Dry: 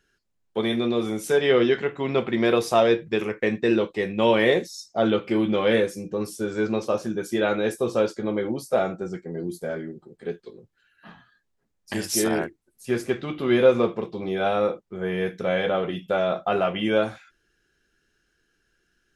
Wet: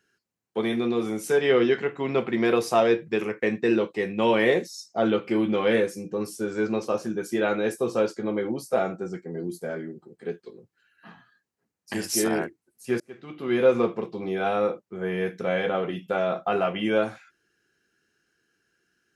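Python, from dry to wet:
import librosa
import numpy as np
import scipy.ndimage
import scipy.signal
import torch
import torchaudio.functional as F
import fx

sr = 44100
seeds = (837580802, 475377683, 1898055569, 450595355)

y = fx.edit(x, sr, fx.fade_in_span(start_s=13.0, length_s=0.76), tone=tone)
y = scipy.signal.sosfilt(scipy.signal.butter(2, 120.0, 'highpass', fs=sr, output='sos'), y)
y = fx.peak_eq(y, sr, hz=3500.0, db=-6.0, octaves=0.23)
y = fx.notch(y, sr, hz=590.0, q=14.0)
y = y * 10.0 ** (-1.0 / 20.0)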